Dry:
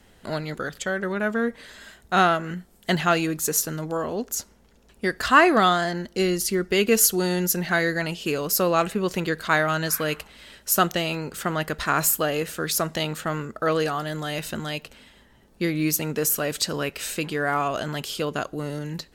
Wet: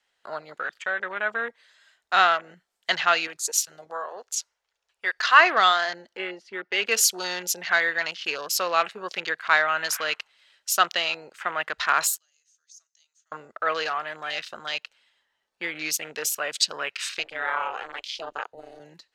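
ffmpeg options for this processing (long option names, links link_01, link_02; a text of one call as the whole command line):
ffmpeg -i in.wav -filter_complex "[0:a]asettb=1/sr,asplit=3[link_01][link_02][link_03];[link_01]atrim=end=3.274[link_04];[link_02]atrim=start=3.27:end=5.4,asetpts=PTS-STARTPTS,afade=type=in:duration=0.004:curve=qsin,afade=type=out:start_time=2.126:duration=0.004:curve=qsin,equalizer=frequency=240:width_type=o:width=0.96:gain=-13[link_05];[link_03]atrim=start=5.396[link_06];[link_04][link_05]acrossfade=duration=0.004:curve1=hsin:curve2=qsin[link_07];[link_07][link_06]acrossfade=duration=0.004:curve1=qsin:curve2=hsin,asplit=3[link_08][link_09][link_10];[link_08]afade=type=out:start_time=6.16:duration=0.02[link_11];[link_09]highpass=190,lowpass=2700,afade=type=in:start_time=6.16:duration=0.02,afade=type=out:start_time=6.81:duration=0.02[link_12];[link_10]afade=type=in:start_time=6.81:duration=0.02[link_13];[link_11][link_12][link_13]amix=inputs=3:normalize=0,asettb=1/sr,asplit=3[link_14][link_15][link_16];[link_14]atrim=end=12.184[link_17];[link_15]atrim=start=12.18:end=13.32,asetpts=PTS-STARTPTS,afade=type=in:duration=0.004:curve=qsin,afade=type=out:start_time=1.136:duration=0.004:curve=qsin,bandpass=frequency=6300:width_type=q:width=10[link_18];[link_16]atrim=start=13.316[link_19];[link_17][link_18]acrossfade=duration=0.004:curve1=hsin:curve2=qsin[link_20];[link_20][link_19]acrossfade=duration=0.004:curve1=qsin:curve2=hsin,asettb=1/sr,asplit=3[link_21][link_22][link_23];[link_21]atrim=end=17.194[link_24];[link_22]atrim=start=17.19:end=18.8,asetpts=PTS-STARTPTS,afade=type=in:duration=0.004:curve=qsin,afade=type=out:start_time=1.606:duration=0.004:curve=qsin,aeval=exprs='val(0)*sin(2*PI*160*n/s)':channel_layout=same[link_25];[link_23]atrim=start=18.796[link_26];[link_24][link_25]acrossfade=duration=0.004:curve1=hsin:curve2=qsin[link_27];[link_27][link_26]acrossfade=duration=0.004:curve1=qsin:curve2=hsin,tiltshelf=frequency=720:gain=-6.5,afwtdn=0.0282,acrossover=split=460 7300:gain=0.141 1 0.178[link_28][link_29][link_30];[link_28][link_29][link_30]amix=inputs=3:normalize=0,volume=-1.5dB" out.wav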